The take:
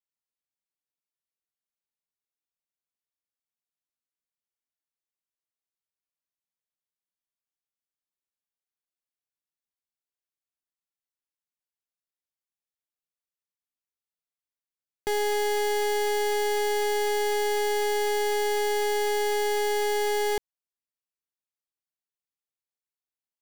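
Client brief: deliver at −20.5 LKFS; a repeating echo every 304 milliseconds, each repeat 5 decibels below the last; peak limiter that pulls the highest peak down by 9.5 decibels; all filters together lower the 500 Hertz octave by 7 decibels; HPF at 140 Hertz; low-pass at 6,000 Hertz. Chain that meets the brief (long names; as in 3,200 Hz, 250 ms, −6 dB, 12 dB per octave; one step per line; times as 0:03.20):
high-pass filter 140 Hz
low-pass filter 6,000 Hz
parametric band 500 Hz −9 dB
brickwall limiter −31 dBFS
repeating echo 304 ms, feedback 56%, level −5 dB
level +17.5 dB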